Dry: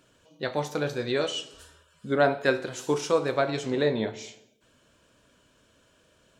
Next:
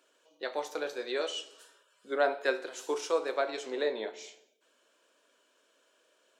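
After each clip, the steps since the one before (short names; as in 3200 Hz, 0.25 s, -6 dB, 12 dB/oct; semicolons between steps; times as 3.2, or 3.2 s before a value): HPF 350 Hz 24 dB/oct; gain -5 dB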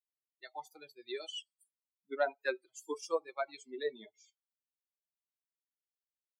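per-bin expansion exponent 3; gain -1 dB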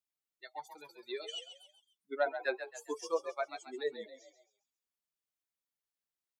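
frequency-shifting echo 0.135 s, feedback 41%, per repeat +47 Hz, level -10 dB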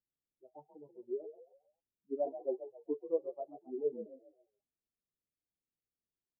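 Gaussian blur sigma 18 samples; gain +7.5 dB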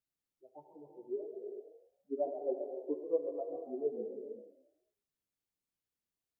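non-linear reverb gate 0.49 s flat, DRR 5 dB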